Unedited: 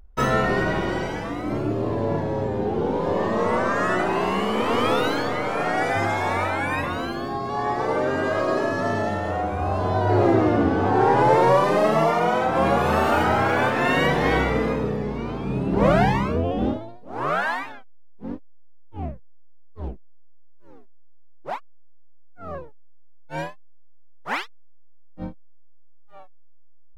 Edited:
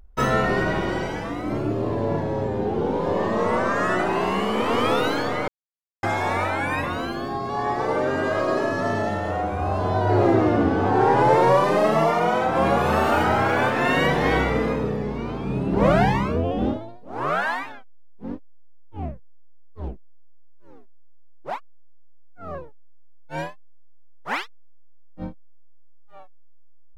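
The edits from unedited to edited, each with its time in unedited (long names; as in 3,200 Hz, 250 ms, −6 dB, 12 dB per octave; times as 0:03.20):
0:05.48–0:06.03: silence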